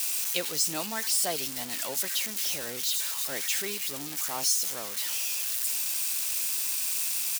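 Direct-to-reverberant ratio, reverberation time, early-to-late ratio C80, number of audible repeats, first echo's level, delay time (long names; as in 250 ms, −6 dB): no reverb audible, no reverb audible, no reverb audible, 1, −23.5 dB, 344 ms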